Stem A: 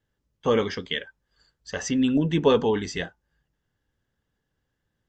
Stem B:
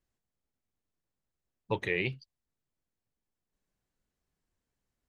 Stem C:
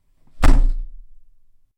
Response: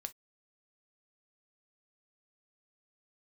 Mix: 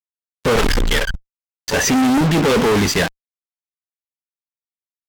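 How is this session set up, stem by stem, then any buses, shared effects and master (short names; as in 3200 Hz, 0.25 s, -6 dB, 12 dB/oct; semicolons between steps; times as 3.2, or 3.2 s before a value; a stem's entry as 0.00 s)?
-3.0 dB, 0.00 s, no send, dry
-13.5 dB, 0.00 s, no send, dry
-8.5 dB, 0.15 s, no send, band shelf 2800 Hz +9.5 dB 2.9 oct; compressor 16:1, threshold -17 dBFS, peak gain reduction 12.5 dB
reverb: off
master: bell 130 Hz -5 dB 0.29 oct; fuzz box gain 49 dB, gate -41 dBFS; decimation joined by straight lines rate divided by 2×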